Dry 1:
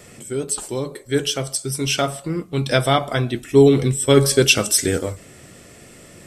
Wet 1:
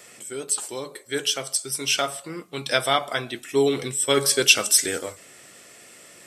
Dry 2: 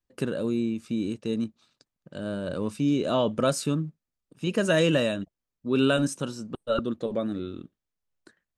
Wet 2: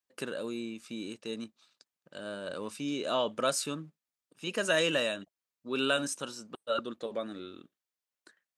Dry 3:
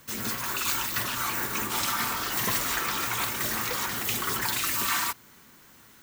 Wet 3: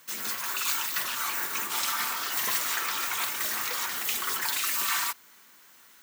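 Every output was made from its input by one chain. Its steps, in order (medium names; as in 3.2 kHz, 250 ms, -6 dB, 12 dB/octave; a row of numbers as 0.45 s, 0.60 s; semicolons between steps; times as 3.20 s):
high-pass 930 Hz 6 dB/octave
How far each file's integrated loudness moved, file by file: -3.0 LU, -6.0 LU, -0.5 LU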